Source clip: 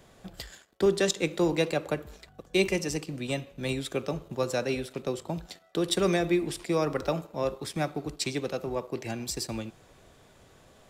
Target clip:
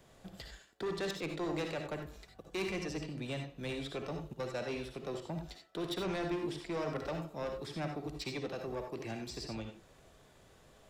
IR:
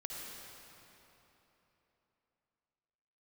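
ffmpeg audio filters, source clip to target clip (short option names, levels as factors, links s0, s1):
-filter_complex "[0:a]asettb=1/sr,asplit=3[s0][s1][s2];[s0]atrim=end=4.334[s3];[s1]atrim=start=4.33:end=4.78,asetpts=PTS-STARTPTS,afade=t=in:d=0.004:c=qsin,afade=t=out:st=0.446:d=0.004:c=qsin,agate=range=0.178:threshold=0.0316:ratio=16:detection=peak[s4];[s2]atrim=start=4.776[s5];[s3][s4]acrossfade=d=0.004:c1=hsin:c2=qsin[s6];[s6][s5]acrossfade=d=0.004:c1=qsin:c2=hsin,acrossover=split=650|5300[s7][s8][s9];[s9]acompressor=threshold=0.00126:ratio=6[s10];[s7][s8][s10]amix=inputs=3:normalize=0,asoftclip=type=tanh:threshold=0.0447[s11];[1:a]atrim=start_sample=2205,atrim=end_sample=4410[s12];[s11][s12]afir=irnorm=-1:irlink=0,volume=0.891"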